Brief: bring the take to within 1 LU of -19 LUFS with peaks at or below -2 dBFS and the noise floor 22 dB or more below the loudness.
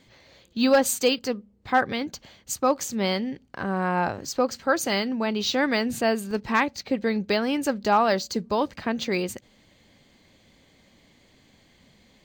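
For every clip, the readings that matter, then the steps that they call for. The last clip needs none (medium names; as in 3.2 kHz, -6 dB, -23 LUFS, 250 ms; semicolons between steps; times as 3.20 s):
dropouts 1; longest dropout 1.5 ms; loudness -25.0 LUFS; peak level -10.0 dBFS; loudness target -19.0 LUFS
-> interpolate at 6.31 s, 1.5 ms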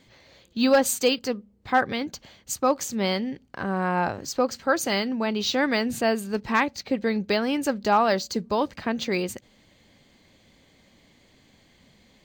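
dropouts 0; loudness -25.0 LUFS; peak level -10.0 dBFS; loudness target -19.0 LUFS
-> trim +6 dB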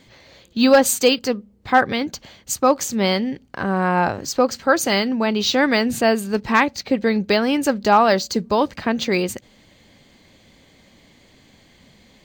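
loudness -19.0 LUFS; peak level -4.0 dBFS; noise floor -54 dBFS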